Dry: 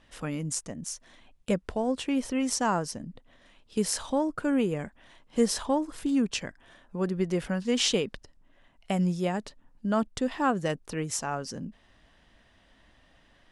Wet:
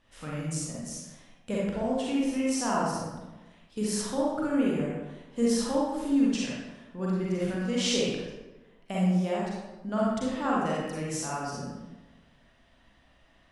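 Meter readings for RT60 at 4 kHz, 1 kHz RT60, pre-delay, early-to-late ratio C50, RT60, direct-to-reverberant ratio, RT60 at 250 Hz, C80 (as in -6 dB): 0.75 s, 1.1 s, 35 ms, -3.0 dB, 1.1 s, -6.0 dB, 1.2 s, 1.5 dB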